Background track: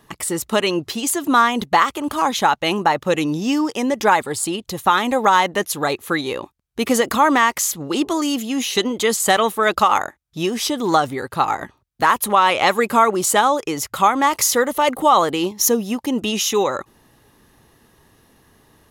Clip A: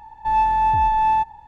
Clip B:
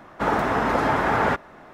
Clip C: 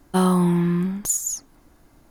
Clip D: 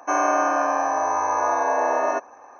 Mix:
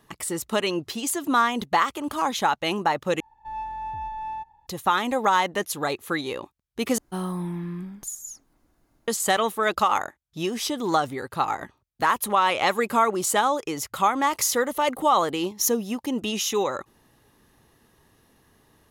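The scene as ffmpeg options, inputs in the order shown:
-filter_complex "[0:a]volume=-6dB,asplit=3[a][b][c];[a]atrim=end=3.204[d];[1:a]atrim=end=1.47,asetpts=PTS-STARTPTS,volume=-15dB[e];[b]atrim=start=4.666:end=6.984[f];[3:a]atrim=end=2.1,asetpts=PTS-STARTPTS,volume=-11.5dB[g];[c]atrim=start=9.076[h];[d][e]acrossfade=d=0.004:c1=hsin:c2=hsin[i];[i][f]acrossfade=d=0.004:c1=hsin:c2=hsin[j];[j][g]acrossfade=d=0.004:c1=hsin:c2=hsin[k];[k][h]acrossfade=d=0.004:c1=hsin:c2=hsin"

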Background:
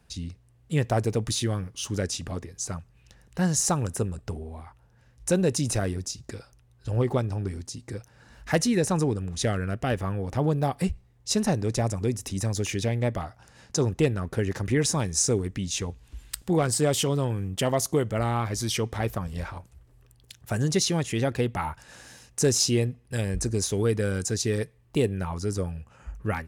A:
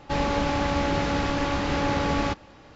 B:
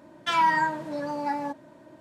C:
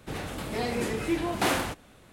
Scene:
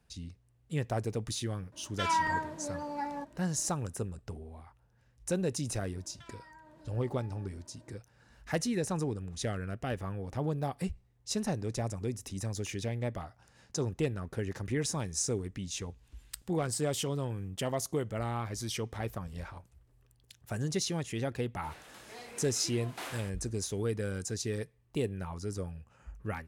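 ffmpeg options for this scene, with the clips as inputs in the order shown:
-filter_complex "[2:a]asplit=2[a][b];[0:a]volume=-8.5dB[c];[b]acompressor=threshold=-42dB:ratio=6:attack=3.2:release=140:knee=1:detection=peak[d];[3:a]highpass=f=760:p=1[e];[a]atrim=end=2,asetpts=PTS-STARTPTS,volume=-7.5dB,afade=t=in:d=0.004:c=hsin,afade=t=out:st=1.996:d=0.004:c=hsin,adelay=1720[f];[d]atrim=end=2,asetpts=PTS-STARTPTS,volume=-12dB,afade=t=in:d=0.004:c=hsin,afade=t=out:st=1.996:d=0.004:c=hsin,adelay=5940[g];[e]atrim=end=2.12,asetpts=PTS-STARTPTS,volume=-13.5dB,afade=t=in:d=0.004:c=hsin,afade=t=out:st=2.116:d=0.004:c=hsin,adelay=21560[h];[c][f][g][h]amix=inputs=4:normalize=0"

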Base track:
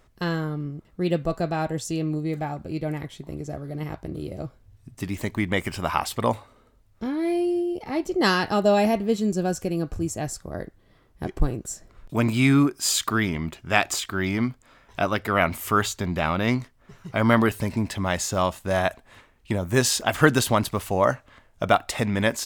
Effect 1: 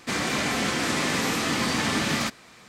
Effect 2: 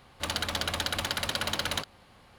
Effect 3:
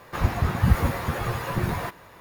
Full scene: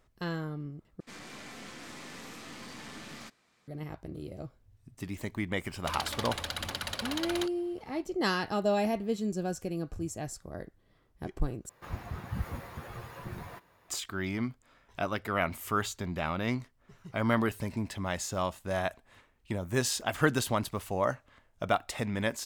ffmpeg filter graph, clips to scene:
-filter_complex "[0:a]volume=-8.5dB[a];[1:a]aeval=exprs='(tanh(12.6*val(0)+0.55)-tanh(0.55))/12.6':c=same[b];[2:a]aphaser=in_gain=1:out_gain=1:delay=3.7:decay=0.31:speed=0.93:type=triangular[c];[a]asplit=3[d][e][f];[d]atrim=end=1.004[g];[b]atrim=end=2.68,asetpts=PTS-STARTPTS,volume=-17dB[h];[e]atrim=start=3.676:end=11.694[i];[3:a]atrim=end=2.2,asetpts=PTS-STARTPTS,volume=-15.5dB[j];[f]atrim=start=13.886[k];[c]atrim=end=2.38,asetpts=PTS-STARTPTS,volume=-6dB,afade=t=in:d=0.004:c=hsin,afade=t=out:st=2.376:d=0.004:c=hsin,adelay=5640[l];[g][h]acrossfade=d=0.004:c1=hsin:c2=hsin[m];[m][i]acrossfade=d=0.004:c1=hsin:c2=hsin[n];[n][j]acrossfade=d=0.004:c1=hsin:c2=hsin[o];[o][k]acrossfade=d=0.004:c1=hsin:c2=hsin[p];[p][l]amix=inputs=2:normalize=0"

